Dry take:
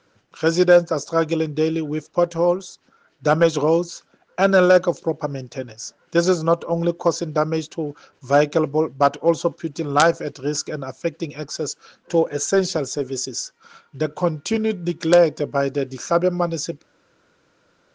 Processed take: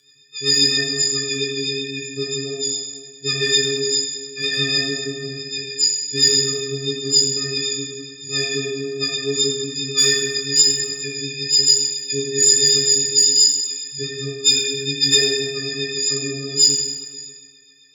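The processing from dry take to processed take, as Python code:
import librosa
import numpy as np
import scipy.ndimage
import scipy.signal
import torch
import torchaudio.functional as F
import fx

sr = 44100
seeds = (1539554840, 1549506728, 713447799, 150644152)

p1 = fx.freq_snap(x, sr, grid_st=6)
p2 = scipy.signal.sosfilt(scipy.signal.ellip(3, 1.0, 40, [500.0, 1600.0], 'bandstop', fs=sr, output='sos'), p1)
p3 = fx.band_shelf(p2, sr, hz=4800.0, db=13.0, octaves=1.7)
p4 = p3 + fx.echo_single(p3, sr, ms=579, db=-22.5, dry=0)
p5 = fx.robotise(p4, sr, hz=137.0)
p6 = scipy.signal.sosfilt(scipy.signal.butter(4, 70.0, 'highpass', fs=sr, output='sos'), p5)
p7 = 10.0 ** (-8.5 / 20.0) * np.tanh(p6 / 10.0 ** (-8.5 / 20.0))
p8 = p6 + F.gain(torch.from_numpy(p7), -5.5).numpy()
p9 = fx.rotary(p8, sr, hz=7.5)
p10 = fx.rev_fdn(p9, sr, rt60_s=1.9, lf_ratio=0.8, hf_ratio=0.65, size_ms=57.0, drr_db=-4.5)
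y = F.gain(torch.from_numpy(p10), -6.5).numpy()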